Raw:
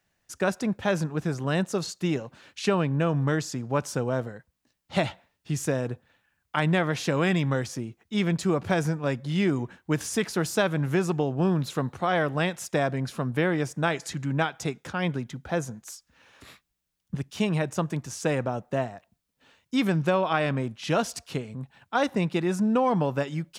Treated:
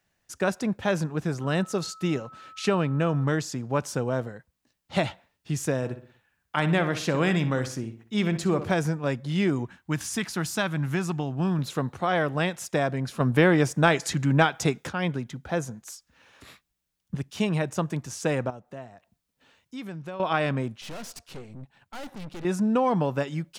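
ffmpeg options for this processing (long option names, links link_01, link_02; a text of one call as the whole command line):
ffmpeg -i in.wav -filter_complex "[0:a]asettb=1/sr,asplit=3[link_01][link_02][link_03];[link_01]atrim=end=1.414[link_04];[link_02]atrim=start=1.41:end=3.24,asetpts=PTS-STARTPTS,afade=type=in:duration=0.004:curve=qsin,afade=type=out:start_time=1.826:duration=0.004:curve=qsin,aeval=exprs='val(0)+0.00562*sin(2*PI*1300*n/s)':channel_layout=same[link_05];[link_03]atrim=start=3.236[link_06];[link_04][link_05]acrossfade=duration=0.004:curve1=hsin:curve2=qsin[link_07];[link_07][link_06]acrossfade=duration=0.004:curve1=qsin:curve2=hsin,asettb=1/sr,asplit=3[link_08][link_09][link_10];[link_08]atrim=end=5.764[link_11];[link_09]atrim=start=5.76:end=8.72,asetpts=PTS-STARTPTS,afade=type=in:duration=0.004:curve=qsin,afade=type=out:start_time=2.956:duration=0.004:curve=qsin,asplit=2[link_12][link_13];[link_13]adelay=62,lowpass=frequency=3900:poles=1,volume=-11dB,asplit=2[link_14][link_15];[link_15]adelay=62,lowpass=frequency=3900:poles=1,volume=0.43,asplit=2[link_16][link_17];[link_17]adelay=62,lowpass=frequency=3900:poles=1,volume=0.43,asplit=2[link_18][link_19];[link_19]adelay=62,lowpass=frequency=3900:poles=1,volume=0.43[link_20];[link_12][link_14][link_16][link_18][link_20]amix=inputs=5:normalize=0,atrim=end_sample=130536[link_21];[link_10]atrim=start=8.716[link_22];[link_11][link_21]acrossfade=duration=0.004:curve1=hsin:curve2=qsin[link_23];[link_23][link_22]acrossfade=duration=0.004:curve1=qsin:curve2=hsin,asettb=1/sr,asplit=3[link_24][link_25][link_26];[link_24]atrim=end=9.654[link_27];[link_25]atrim=start=9.65:end=11.59,asetpts=PTS-STARTPTS,afade=type=in:duration=0.004:curve=qsin,afade=type=out:start_time=1.936:duration=0.004:curve=qsin,equalizer=frequency=470:width_type=o:width=0.88:gain=-10[link_28];[link_26]atrim=start=11.586[link_29];[link_27][link_28]acrossfade=duration=0.004:curve1=hsin:curve2=qsin[link_30];[link_30][link_29]acrossfade=duration=0.004:curve1=qsin:curve2=hsin,asettb=1/sr,asplit=3[link_31][link_32][link_33];[link_31]atrim=end=13.204[link_34];[link_32]atrim=start=13.2:end=14.89,asetpts=PTS-STARTPTS,afade=type=in:duration=0.004:curve=qsin,afade=type=out:start_time=1.686:duration=0.004:curve=qsin,acontrast=47[link_35];[link_33]atrim=start=14.886[link_36];[link_34][link_35]acrossfade=duration=0.004:curve1=hsin:curve2=qsin[link_37];[link_37][link_36]acrossfade=duration=0.004:curve1=qsin:curve2=hsin,asettb=1/sr,asplit=3[link_38][link_39][link_40];[link_38]atrim=end=18.504[link_41];[link_39]atrim=start=18.5:end=20.2,asetpts=PTS-STARTPTS,afade=type=in:duration=0.004:curve=qsin,afade=type=out:start_time=1.696:duration=0.004:curve=qsin,acompressor=threshold=-58dB:ratio=1.5:attack=3.2:release=140:knee=1:detection=peak[link_42];[link_40]atrim=start=20.196[link_43];[link_41][link_42]acrossfade=duration=0.004:curve1=hsin:curve2=qsin[link_44];[link_44][link_43]acrossfade=duration=0.004:curve1=qsin:curve2=hsin,asettb=1/sr,asplit=3[link_45][link_46][link_47];[link_45]atrim=end=20.814[link_48];[link_46]atrim=start=20.81:end=22.45,asetpts=PTS-STARTPTS,afade=type=in:duration=0.004:curve=qsin,afade=type=out:start_time=1.636:duration=0.004:curve=qsin,aeval=exprs='(tanh(70.8*val(0)+0.75)-tanh(0.75))/70.8':channel_layout=same[link_49];[link_47]atrim=start=22.446[link_50];[link_48][link_49]acrossfade=duration=0.004:curve1=hsin:curve2=qsin[link_51];[link_51][link_50]acrossfade=duration=0.004:curve1=qsin:curve2=hsin" out.wav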